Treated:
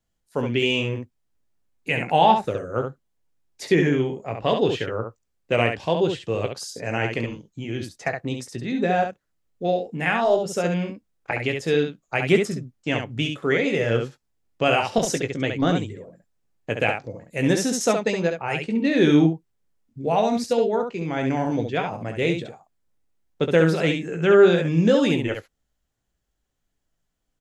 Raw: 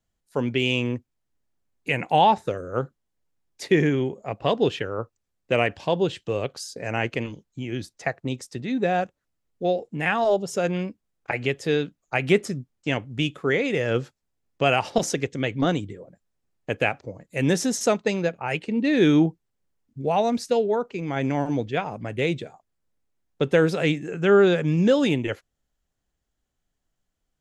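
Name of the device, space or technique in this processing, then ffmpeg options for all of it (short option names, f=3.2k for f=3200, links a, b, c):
slapback doubling: -filter_complex "[0:a]asplit=3[a][b][c];[b]adelay=18,volume=-8.5dB[d];[c]adelay=68,volume=-5.5dB[e];[a][d][e]amix=inputs=3:normalize=0"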